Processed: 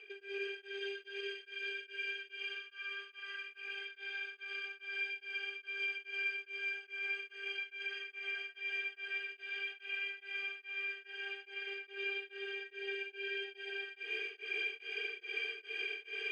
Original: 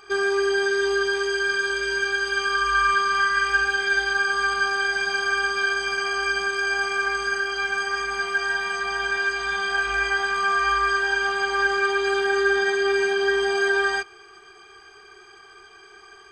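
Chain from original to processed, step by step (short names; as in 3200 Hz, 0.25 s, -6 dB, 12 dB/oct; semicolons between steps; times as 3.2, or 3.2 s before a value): bell 2000 Hz +13.5 dB 2.1 oct; reverse; compressor 6:1, threshold -35 dBFS, peak gain reduction 27.5 dB; reverse; limiter -31 dBFS, peak gain reduction 7 dB; double band-pass 1100 Hz, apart 2.5 oct; on a send: thinning echo 0.123 s, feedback 72%, high-pass 620 Hz, level -4 dB; on the sum: beating tremolo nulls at 2.4 Hz; gain +12 dB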